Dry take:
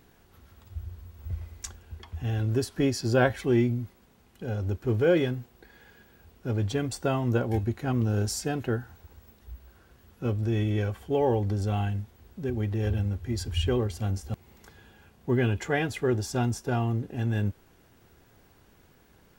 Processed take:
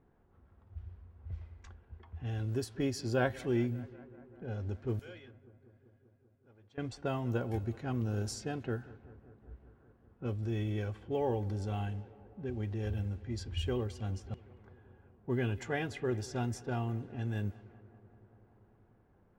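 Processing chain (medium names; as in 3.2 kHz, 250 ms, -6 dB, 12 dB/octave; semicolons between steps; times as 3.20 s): 4.99–6.78 s: pre-emphasis filter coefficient 0.97; bucket-brigade echo 194 ms, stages 4096, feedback 77%, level -21 dB; level-controlled noise filter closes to 1.1 kHz, open at -22.5 dBFS; trim -8 dB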